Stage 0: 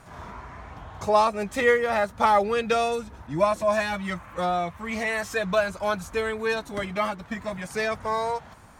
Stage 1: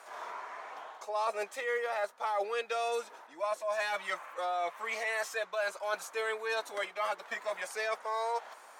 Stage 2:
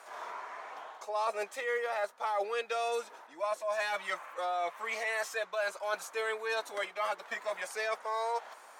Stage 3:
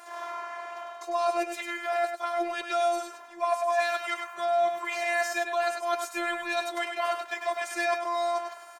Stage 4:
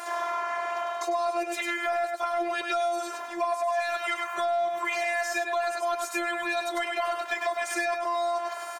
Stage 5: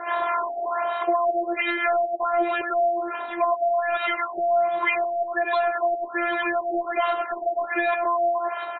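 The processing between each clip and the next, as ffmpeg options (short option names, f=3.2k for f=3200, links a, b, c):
-af "highpass=f=460:w=0.5412,highpass=f=460:w=1.3066,areverse,acompressor=threshold=-30dB:ratio=10,areverse"
-af anull
-af "afftfilt=real='hypot(re,im)*cos(PI*b)':imag='0':win_size=512:overlap=0.75,aecho=1:1:100:0.473,volume=8dB"
-filter_complex "[0:a]asplit=2[a][b];[b]asoftclip=type=tanh:threshold=-29.5dB,volume=-4.5dB[c];[a][c]amix=inputs=2:normalize=0,acompressor=threshold=-33dB:ratio=5,volume=7dB"
-filter_complex "[0:a]acrossover=split=890[a][b];[a]aeval=exprs='val(0)*(1-0.5/2+0.5/2*cos(2*PI*4.6*n/s))':c=same[c];[b]aeval=exprs='val(0)*(1-0.5/2-0.5/2*cos(2*PI*4.6*n/s))':c=same[d];[c][d]amix=inputs=2:normalize=0,afftfilt=real='re*lt(b*sr/1024,820*pow(4200/820,0.5+0.5*sin(2*PI*1.3*pts/sr)))':imag='im*lt(b*sr/1024,820*pow(4200/820,0.5+0.5*sin(2*PI*1.3*pts/sr)))':win_size=1024:overlap=0.75,volume=8dB"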